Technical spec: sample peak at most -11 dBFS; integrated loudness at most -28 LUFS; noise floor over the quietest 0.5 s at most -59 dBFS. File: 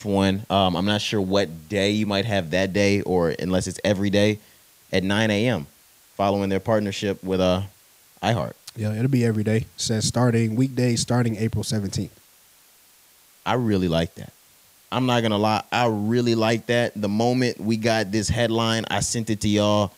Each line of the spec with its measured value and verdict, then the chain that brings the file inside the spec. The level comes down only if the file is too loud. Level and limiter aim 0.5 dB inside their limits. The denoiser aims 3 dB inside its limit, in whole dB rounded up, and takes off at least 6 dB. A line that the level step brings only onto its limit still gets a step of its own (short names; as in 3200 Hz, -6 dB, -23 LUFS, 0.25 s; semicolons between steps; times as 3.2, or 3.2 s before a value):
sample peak -5.0 dBFS: fail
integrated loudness -22.5 LUFS: fail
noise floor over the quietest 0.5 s -55 dBFS: fail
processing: gain -6 dB; limiter -11.5 dBFS